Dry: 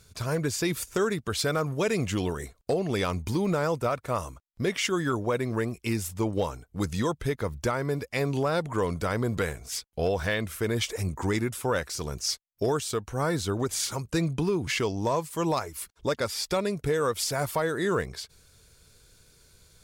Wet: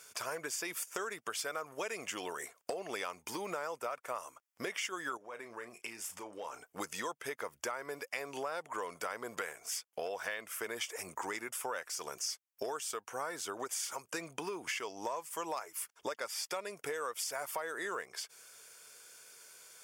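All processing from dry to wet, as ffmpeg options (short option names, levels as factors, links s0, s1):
-filter_complex "[0:a]asettb=1/sr,asplit=3[s0][s1][s2];[s0]atrim=end=5.174[s3];[s1]atrim=start=5.17:end=6.64,asetpts=PTS-STARTPTS,afade=t=in:d=0.004:c=qsin,afade=t=out:st=1.466:d=0.004:c=qsin,highshelf=f=12000:g=-10.5,acompressor=threshold=0.0112:ratio=6:attack=3.2:release=140:knee=1:detection=peak,asplit=2[s4][s5];[s5]adelay=34,volume=0.266[s6];[s4][s6]amix=inputs=2:normalize=0,atrim=end_sample=64827[s7];[s2]atrim=start=6.636[s8];[s3][s7]acrossfade=d=0.004:c1=hsin:c2=qsin[s9];[s9][s8]acrossfade=d=0.004:c1=qsin:c2=hsin,highpass=670,equalizer=f=4000:w=5.5:g=-14.5,acompressor=threshold=0.00631:ratio=4,volume=2"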